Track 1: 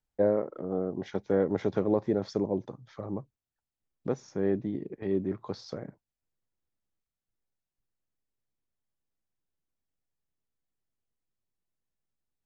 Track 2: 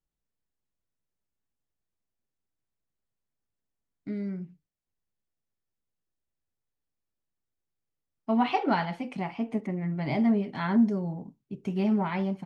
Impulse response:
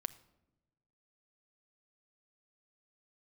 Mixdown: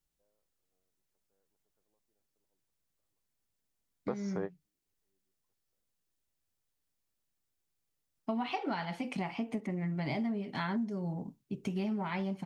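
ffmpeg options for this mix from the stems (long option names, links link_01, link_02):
-filter_complex "[0:a]equalizer=frequency=1000:width_type=o:width=1.9:gain=11.5,volume=-3.5dB[link_01];[1:a]volume=1dB,asplit=2[link_02][link_03];[link_03]apad=whole_len=549109[link_04];[link_01][link_04]sidechaingate=range=-59dB:threshold=-37dB:ratio=16:detection=peak[link_05];[link_05][link_02]amix=inputs=2:normalize=0,highshelf=frequency=2800:gain=7,acompressor=threshold=-32dB:ratio=6"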